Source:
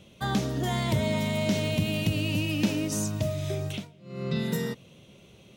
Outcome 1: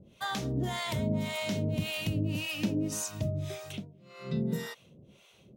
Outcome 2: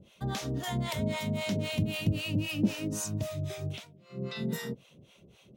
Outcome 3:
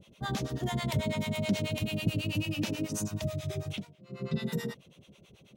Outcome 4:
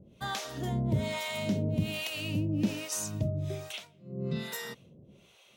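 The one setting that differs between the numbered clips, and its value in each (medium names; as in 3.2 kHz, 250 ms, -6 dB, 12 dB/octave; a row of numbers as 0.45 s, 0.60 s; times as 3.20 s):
harmonic tremolo, rate: 1.8 Hz, 3.8 Hz, 9.2 Hz, 1.2 Hz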